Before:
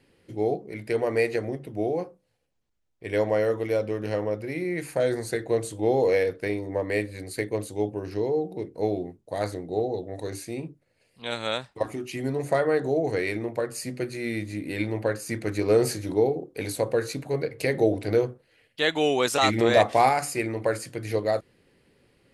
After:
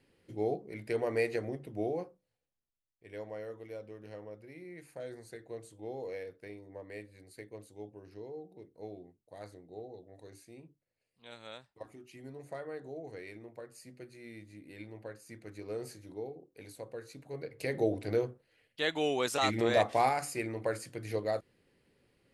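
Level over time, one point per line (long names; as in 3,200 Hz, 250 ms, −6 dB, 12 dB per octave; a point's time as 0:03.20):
0:01.87 −7 dB
0:03.07 −19 dB
0:17.06 −19 dB
0:17.78 −8 dB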